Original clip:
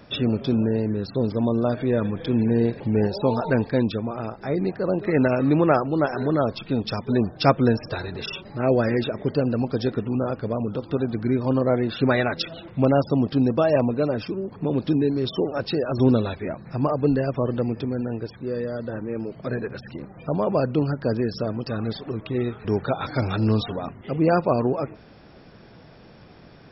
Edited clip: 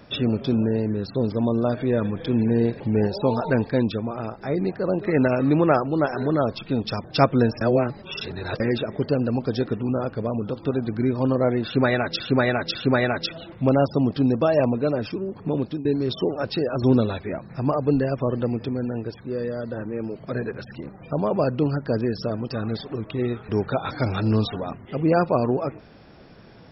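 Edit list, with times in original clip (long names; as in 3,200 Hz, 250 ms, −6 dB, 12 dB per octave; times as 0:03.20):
0:07.04–0:07.30: remove
0:07.87–0:08.86: reverse
0:11.91–0:12.46: repeat, 3 plays
0:14.71–0:15.01: fade out, to −16.5 dB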